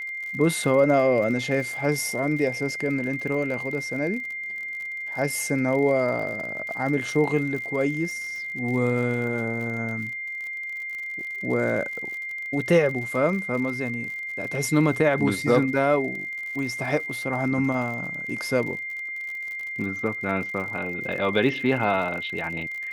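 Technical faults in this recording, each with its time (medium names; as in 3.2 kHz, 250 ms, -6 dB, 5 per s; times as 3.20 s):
crackle 58 per s -33 dBFS
whine 2.1 kHz -30 dBFS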